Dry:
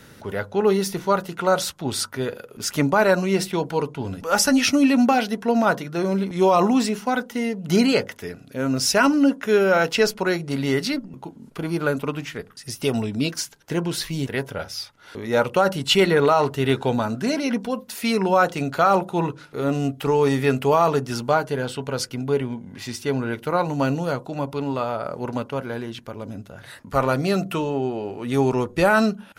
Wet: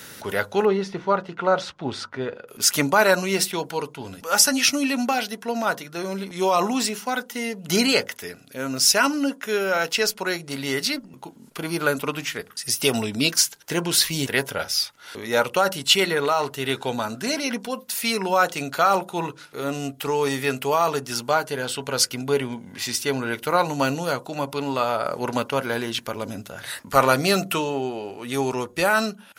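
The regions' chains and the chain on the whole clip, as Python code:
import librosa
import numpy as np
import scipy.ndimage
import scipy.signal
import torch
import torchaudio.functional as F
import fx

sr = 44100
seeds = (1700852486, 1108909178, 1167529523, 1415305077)

y = fx.chain(x, sr, fx.block_float(bits=7),
    fx.spacing_loss(db_at_10k=34), at=(0.65, 2.48))
y = fx.rider(y, sr, range_db=10, speed_s=2.0)
y = fx.tilt_eq(y, sr, slope=2.5)
y = F.gain(torch.from_numpy(y), -1.5).numpy()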